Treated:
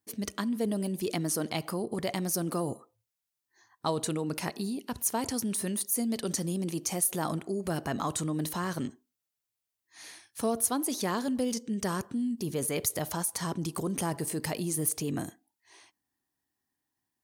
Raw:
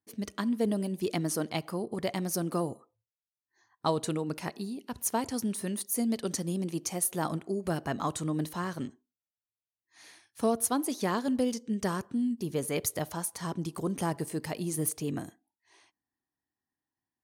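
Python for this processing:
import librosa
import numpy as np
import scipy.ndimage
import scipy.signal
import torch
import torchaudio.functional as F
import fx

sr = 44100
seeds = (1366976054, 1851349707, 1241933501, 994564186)

p1 = fx.high_shelf(x, sr, hz=5400.0, db=5.5)
p2 = fx.over_compress(p1, sr, threshold_db=-36.0, ratio=-1.0)
p3 = p1 + (p2 * 10.0 ** (-3.0 / 20.0))
y = p3 * 10.0 ** (-3.0 / 20.0)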